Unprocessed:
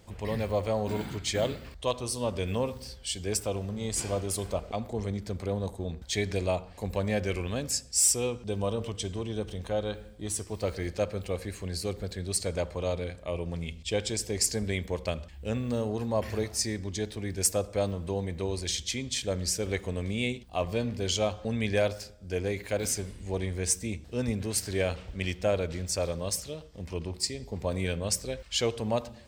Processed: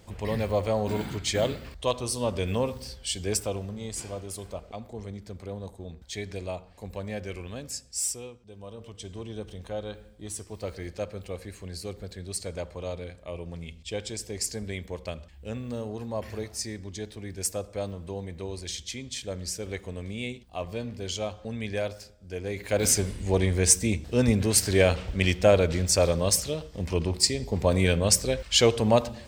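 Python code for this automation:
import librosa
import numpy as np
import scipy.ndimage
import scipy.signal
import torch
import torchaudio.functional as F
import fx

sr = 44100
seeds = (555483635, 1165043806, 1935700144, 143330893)

y = fx.gain(x, sr, db=fx.line((3.32, 2.5), (4.12, -6.0), (8.05, -6.0), (8.45, -16.5), (9.21, -4.0), (22.41, -4.0), (22.89, 8.0)))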